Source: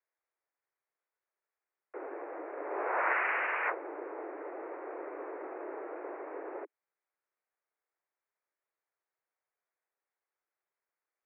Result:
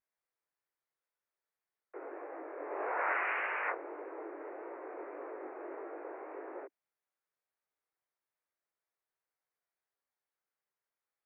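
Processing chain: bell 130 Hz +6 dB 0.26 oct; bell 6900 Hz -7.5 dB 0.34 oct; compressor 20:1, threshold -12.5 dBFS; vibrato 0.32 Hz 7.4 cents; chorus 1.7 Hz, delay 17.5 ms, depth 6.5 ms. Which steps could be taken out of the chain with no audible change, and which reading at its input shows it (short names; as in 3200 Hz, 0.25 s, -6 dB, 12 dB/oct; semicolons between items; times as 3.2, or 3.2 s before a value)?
bell 130 Hz: input band starts at 240 Hz; bell 6900 Hz: input band ends at 2900 Hz; compressor, threshold -12.5 dBFS: input peak -18.5 dBFS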